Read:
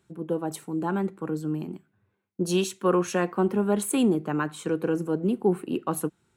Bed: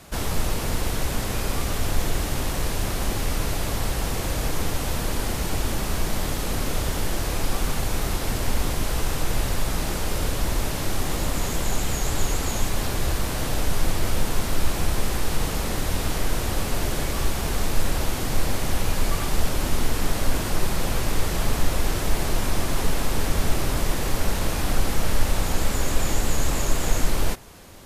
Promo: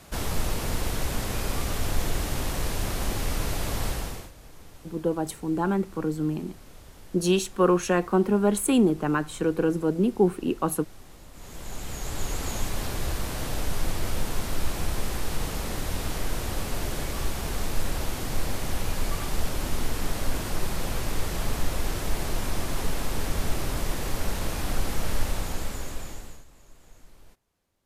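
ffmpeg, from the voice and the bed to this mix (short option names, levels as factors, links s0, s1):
-filter_complex "[0:a]adelay=4750,volume=1.26[s0];[1:a]volume=5.62,afade=t=out:st=3.88:d=0.43:silence=0.1,afade=t=in:st=11.32:d=1.16:silence=0.125893,afade=t=out:st=25.2:d=1.25:silence=0.0501187[s1];[s0][s1]amix=inputs=2:normalize=0"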